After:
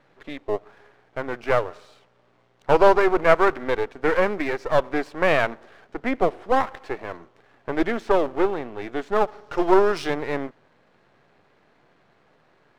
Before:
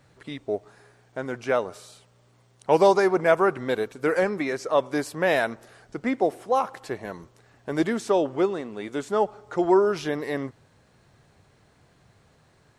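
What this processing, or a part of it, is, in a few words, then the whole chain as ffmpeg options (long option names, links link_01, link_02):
crystal radio: -filter_complex "[0:a]asettb=1/sr,asplit=3[link_01][link_02][link_03];[link_01]atrim=end=9.274[link_04];[link_02]atrim=start=9.27:end=10.14,asetpts=PTS-STARTPTS,afade=type=in:duration=0.004:curve=qsin,afade=type=out:start_time=0.866:duration=0.004:curve=qsin,equalizer=frequency=5300:width=1.2:gain=13.5[link_05];[link_03]atrim=start=10.136[link_06];[link_04][link_05]acrossfade=duration=0.004:curve1=hsin:curve2=qsin[link_07];[link_07][link_06]acrossfade=duration=0.004:curve1=qsin:curve2=hsin,highpass=240,lowpass=2700,aeval=exprs='if(lt(val(0),0),0.251*val(0),val(0))':channel_layout=same,volume=6dB"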